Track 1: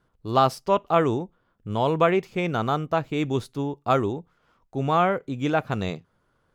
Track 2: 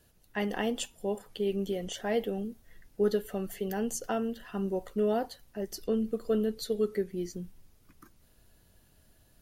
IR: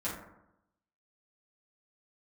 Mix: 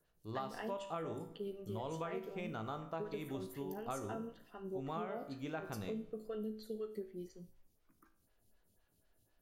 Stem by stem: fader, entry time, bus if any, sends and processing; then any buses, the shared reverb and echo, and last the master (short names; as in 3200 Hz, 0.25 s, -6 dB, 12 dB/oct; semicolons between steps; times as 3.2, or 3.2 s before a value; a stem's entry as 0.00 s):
-11.0 dB, 0.00 s, send -16 dB, dry
-3.0 dB, 0.00 s, no send, photocell phaser 4 Hz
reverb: on, RT60 0.85 s, pre-delay 5 ms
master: resonator 54 Hz, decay 0.47 s, harmonics all, mix 70%; compressor 10:1, threshold -37 dBFS, peak gain reduction 9.5 dB